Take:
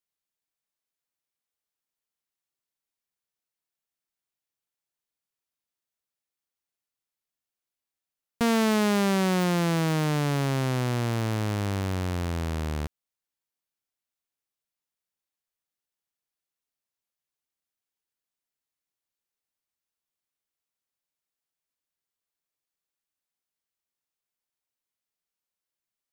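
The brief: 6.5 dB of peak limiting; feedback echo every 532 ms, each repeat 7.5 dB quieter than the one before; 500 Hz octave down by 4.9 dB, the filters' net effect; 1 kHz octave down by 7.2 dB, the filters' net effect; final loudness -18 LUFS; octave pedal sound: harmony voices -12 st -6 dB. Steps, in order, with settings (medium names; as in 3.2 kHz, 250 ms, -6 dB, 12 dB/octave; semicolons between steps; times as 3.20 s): peaking EQ 500 Hz -4.5 dB; peaking EQ 1 kHz -8 dB; peak limiter -24 dBFS; feedback delay 532 ms, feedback 42%, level -7.5 dB; harmony voices -12 st -6 dB; trim +12 dB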